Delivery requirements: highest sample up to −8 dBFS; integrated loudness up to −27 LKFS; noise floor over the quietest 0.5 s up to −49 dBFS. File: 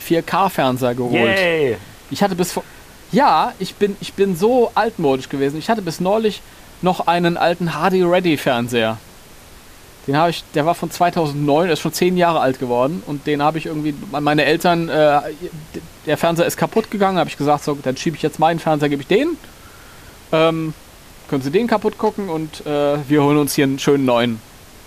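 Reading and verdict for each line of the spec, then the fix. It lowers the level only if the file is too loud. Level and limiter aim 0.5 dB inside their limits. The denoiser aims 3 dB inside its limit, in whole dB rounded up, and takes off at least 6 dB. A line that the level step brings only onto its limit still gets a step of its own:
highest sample −4.0 dBFS: out of spec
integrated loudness −17.5 LKFS: out of spec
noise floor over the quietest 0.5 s −42 dBFS: out of spec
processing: level −10 dB

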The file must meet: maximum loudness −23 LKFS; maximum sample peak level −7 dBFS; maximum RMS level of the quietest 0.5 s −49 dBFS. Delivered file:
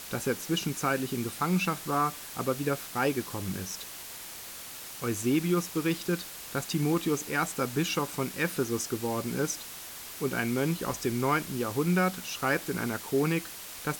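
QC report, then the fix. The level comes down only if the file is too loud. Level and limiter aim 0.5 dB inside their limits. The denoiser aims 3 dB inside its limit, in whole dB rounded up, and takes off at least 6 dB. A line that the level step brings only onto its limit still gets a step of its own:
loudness −30.5 LKFS: in spec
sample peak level −14.5 dBFS: in spec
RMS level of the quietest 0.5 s −43 dBFS: out of spec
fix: broadband denoise 9 dB, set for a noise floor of −43 dBFS

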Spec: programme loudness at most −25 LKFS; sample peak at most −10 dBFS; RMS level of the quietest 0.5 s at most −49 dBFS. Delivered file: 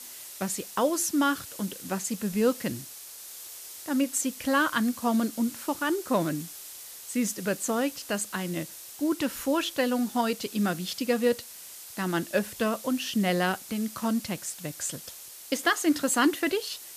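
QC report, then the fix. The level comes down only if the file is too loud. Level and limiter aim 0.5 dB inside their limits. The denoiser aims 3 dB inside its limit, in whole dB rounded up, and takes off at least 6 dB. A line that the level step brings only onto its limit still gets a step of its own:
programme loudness −28.0 LKFS: in spec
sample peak −9.0 dBFS: out of spec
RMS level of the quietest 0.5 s −45 dBFS: out of spec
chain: broadband denoise 7 dB, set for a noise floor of −45 dBFS
brickwall limiter −10.5 dBFS

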